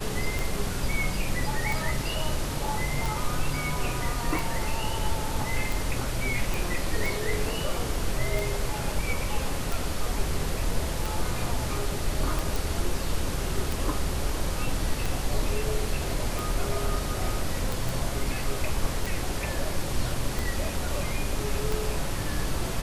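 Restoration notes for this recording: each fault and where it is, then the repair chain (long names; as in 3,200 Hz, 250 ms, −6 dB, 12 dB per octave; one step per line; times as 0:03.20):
scratch tick 45 rpm
0:06.54: click
0:12.56: click
0:17.89: click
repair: click removal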